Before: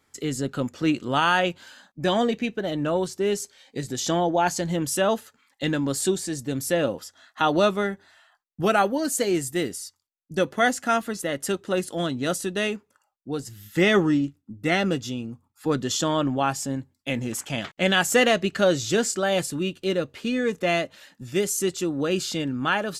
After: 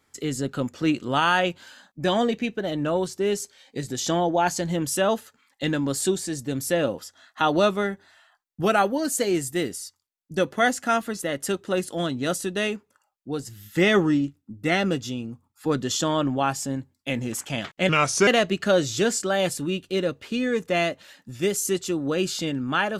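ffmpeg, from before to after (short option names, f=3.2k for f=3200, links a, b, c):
-filter_complex "[0:a]asplit=3[a][b][c];[a]atrim=end=17.894[d];[b]atrim=start=17.89:end=18.2,asetpts=PTS-STARTPTS,asetrate=35721,aresample=44100[e];[c]atrim=start=18.196[f];[d][e]acrossfade=d=0.004:c1=hsin:c2=hsin[g];[g][f]acrossfade=d=0.004:c1=hsin:c2=hsin"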